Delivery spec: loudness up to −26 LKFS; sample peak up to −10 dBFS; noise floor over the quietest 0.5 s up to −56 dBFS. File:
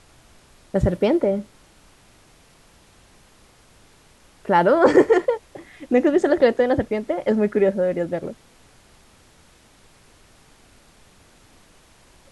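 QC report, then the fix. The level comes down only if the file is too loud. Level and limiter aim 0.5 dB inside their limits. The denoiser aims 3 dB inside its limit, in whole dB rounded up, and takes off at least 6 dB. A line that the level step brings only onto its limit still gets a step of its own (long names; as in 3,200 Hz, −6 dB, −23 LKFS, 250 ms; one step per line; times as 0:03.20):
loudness −19.5 LKFS: out of spec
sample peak −2.5 dBFS: out of spec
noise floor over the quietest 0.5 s −53 dBFS: out of spec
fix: level −7 dB
brickwall limiter −10.5 dBFS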